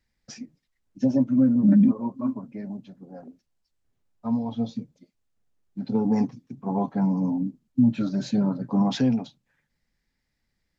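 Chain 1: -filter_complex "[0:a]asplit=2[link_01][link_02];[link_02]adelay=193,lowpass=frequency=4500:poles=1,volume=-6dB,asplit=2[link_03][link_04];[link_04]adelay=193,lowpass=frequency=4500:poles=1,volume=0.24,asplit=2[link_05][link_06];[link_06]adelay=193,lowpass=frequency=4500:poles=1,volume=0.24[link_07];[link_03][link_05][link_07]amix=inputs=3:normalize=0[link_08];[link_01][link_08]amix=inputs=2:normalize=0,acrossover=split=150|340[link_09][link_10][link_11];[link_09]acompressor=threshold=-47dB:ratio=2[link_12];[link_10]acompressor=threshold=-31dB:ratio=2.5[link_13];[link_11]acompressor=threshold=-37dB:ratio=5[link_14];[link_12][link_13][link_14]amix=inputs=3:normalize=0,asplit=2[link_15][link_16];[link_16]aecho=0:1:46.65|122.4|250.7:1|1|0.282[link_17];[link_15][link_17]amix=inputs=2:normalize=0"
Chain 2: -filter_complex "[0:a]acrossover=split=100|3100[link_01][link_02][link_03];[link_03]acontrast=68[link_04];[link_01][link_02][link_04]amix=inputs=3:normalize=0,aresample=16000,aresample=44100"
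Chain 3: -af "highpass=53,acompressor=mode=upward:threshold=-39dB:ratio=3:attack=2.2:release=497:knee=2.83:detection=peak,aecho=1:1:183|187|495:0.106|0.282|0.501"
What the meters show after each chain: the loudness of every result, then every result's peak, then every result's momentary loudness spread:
−25.5, −24.0, −23.5 LKFS; −11.5, −10.0, −7.0 dBFS; 17, 19, 19 LU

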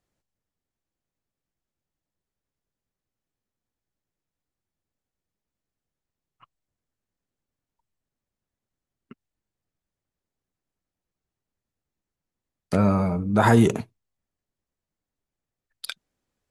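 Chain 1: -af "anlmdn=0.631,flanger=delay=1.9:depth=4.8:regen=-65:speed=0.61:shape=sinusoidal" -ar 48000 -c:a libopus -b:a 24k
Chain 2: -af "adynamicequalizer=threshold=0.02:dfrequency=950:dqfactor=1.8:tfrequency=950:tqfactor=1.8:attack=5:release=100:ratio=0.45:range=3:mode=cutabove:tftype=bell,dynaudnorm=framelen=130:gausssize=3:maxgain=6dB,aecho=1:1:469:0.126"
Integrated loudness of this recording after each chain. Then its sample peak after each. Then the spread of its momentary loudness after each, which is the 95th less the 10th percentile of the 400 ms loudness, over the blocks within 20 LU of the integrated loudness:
−25.5, −17.5 LKFS; −9.5, −2.0 dBFS; 21, 18 LU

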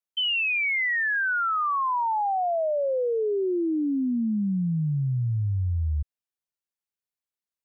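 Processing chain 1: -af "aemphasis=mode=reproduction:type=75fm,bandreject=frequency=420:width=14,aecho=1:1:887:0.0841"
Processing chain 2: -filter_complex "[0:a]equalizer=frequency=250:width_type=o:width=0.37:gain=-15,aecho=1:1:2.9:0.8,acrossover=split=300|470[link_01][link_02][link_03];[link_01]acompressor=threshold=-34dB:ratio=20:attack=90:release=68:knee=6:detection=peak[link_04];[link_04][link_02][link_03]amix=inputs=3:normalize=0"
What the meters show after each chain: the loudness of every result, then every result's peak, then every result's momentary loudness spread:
−25.5, −23.5 LKFS; −20.5, −17.0 dBFS; 2, 17 LU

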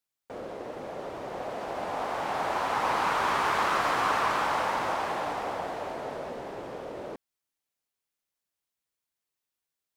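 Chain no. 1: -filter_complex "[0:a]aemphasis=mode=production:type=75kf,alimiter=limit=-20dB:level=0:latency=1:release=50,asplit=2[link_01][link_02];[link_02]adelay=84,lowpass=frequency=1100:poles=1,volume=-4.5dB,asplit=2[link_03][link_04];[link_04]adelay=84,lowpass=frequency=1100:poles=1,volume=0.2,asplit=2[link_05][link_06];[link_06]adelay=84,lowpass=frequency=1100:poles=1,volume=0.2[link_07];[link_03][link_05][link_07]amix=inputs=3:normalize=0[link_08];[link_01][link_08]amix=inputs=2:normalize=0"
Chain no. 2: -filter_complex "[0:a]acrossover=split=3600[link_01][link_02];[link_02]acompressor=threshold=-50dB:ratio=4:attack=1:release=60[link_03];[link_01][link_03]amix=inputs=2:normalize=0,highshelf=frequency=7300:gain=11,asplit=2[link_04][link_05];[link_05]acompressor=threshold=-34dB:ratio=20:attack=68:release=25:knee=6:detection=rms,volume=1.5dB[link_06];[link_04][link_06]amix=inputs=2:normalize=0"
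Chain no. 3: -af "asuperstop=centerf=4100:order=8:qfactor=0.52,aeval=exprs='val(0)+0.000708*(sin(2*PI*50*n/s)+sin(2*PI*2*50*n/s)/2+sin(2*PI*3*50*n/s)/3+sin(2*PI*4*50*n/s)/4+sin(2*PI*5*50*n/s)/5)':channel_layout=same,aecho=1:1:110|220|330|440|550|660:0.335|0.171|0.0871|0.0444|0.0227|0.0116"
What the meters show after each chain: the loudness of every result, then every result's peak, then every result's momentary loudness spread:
−30.5, −25.0, −30.0 LKFS; −17.0, −9.5, −14.5 dBFS; 10, 11, 13 LU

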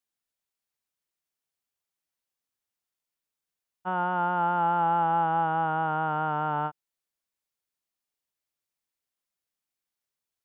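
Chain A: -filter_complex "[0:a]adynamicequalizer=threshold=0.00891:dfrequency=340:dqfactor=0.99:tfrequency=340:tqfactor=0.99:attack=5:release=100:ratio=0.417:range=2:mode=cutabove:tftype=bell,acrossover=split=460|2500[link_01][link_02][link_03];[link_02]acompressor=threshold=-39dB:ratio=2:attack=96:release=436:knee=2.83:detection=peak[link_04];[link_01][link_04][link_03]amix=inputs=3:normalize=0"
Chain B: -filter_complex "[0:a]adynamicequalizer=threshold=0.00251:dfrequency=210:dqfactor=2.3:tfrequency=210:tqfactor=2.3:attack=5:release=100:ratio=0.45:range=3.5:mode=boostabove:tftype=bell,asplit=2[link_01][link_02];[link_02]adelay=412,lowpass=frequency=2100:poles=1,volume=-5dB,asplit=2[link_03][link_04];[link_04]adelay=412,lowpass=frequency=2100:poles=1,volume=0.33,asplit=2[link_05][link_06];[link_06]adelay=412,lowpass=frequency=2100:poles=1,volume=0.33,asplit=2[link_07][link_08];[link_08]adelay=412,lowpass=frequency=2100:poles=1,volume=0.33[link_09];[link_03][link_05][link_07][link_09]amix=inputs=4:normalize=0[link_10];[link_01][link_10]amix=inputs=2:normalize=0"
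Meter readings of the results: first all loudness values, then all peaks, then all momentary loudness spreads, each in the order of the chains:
−32.5, −25.5 LKFS; −21.0, −11.0 dBFS; 5, 14 LU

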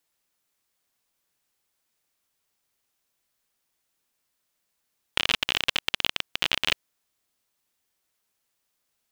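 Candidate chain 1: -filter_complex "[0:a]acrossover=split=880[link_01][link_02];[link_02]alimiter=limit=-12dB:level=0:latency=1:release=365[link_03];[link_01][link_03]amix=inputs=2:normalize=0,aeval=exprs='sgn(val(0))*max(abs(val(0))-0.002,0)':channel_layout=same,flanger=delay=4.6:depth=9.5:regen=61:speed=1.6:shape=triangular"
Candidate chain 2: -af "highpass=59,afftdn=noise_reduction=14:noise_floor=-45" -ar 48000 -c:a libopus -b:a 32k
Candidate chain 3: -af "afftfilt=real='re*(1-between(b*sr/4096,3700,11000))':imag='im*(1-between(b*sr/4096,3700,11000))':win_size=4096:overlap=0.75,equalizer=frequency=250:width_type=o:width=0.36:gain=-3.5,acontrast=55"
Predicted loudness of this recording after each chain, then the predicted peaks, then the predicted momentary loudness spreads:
−35.0, −26.0, −21.5 LKFS; −14.5, −4.0, −1.5 dBFS; 5, 4, 4 LU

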